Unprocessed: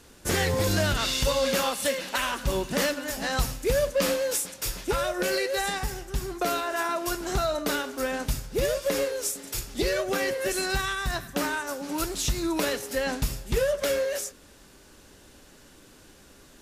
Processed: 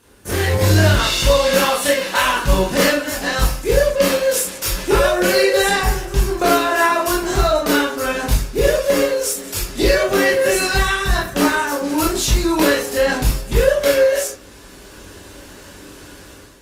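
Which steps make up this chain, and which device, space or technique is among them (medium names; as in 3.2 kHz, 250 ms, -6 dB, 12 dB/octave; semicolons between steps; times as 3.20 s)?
far-field microphone of a smart speaker (reverberation RT60 0.35 s, pre-delay 20 ms, DRR -4.5 dB; high-pass 86 Hz 6 dB/octave; level rider gain up to 10 dB; trim -1 dB; Opus 32 kbps 48 kHz)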